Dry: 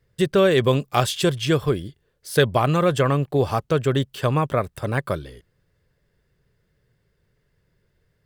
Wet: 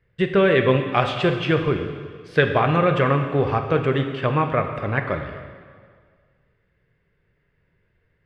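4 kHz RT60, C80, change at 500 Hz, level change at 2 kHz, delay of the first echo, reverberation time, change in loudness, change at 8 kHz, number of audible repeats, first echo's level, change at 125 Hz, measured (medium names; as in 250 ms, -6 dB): 1.7 s, 8.0 dB, +0.5 dB, +4.0 dB, no echo, 1.8 s, +0.5 dB, under -20 dB, no echo, no echo, -0.5 dB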